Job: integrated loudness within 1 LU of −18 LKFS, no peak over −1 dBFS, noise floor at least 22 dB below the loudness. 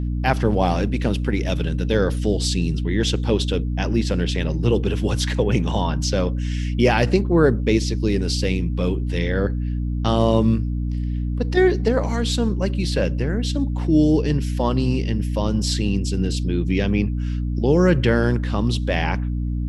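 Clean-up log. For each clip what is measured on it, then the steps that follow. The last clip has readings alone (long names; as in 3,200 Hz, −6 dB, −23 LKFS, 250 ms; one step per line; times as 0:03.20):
mains hum 60 Hz; hum harmonics up to 300 Hz; level of the hum −21 dBFS; integrated loudness −21.0 LKFS; sample peak −2.5 dBFS; target loudness −18.0 LKFS
→ mains-hum notches 60/120/180/240/300 Hz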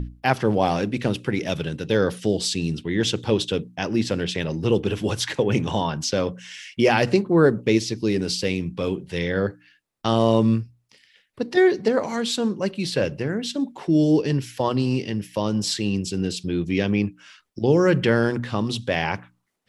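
mains hum none found; integrated loudness −23.0 LKFS; sample peak −3.5 dBFS; target loudness −18.0 LKFS
→ level +5 dB
brickwall limiter −1 dBFS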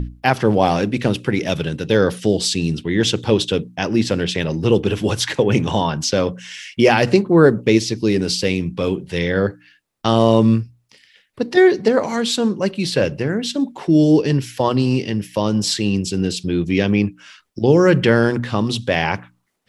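integrated loudness −18.0 LKFS; sample peak −1.0 dBFS; background noise floor −60 dBFS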